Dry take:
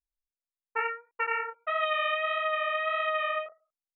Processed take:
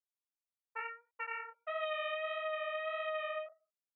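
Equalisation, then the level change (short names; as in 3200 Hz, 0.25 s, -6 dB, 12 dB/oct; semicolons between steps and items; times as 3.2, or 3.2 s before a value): LPF 1800 Hz 6 dB/oct; differentiator; bell 620 Hz +12.5 dB 0.64 oct; +3.5 dB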